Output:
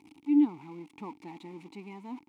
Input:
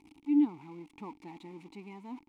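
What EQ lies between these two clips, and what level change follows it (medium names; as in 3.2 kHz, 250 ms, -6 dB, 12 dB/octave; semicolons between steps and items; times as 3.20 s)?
high-pass 100 Hz; +2.5 dB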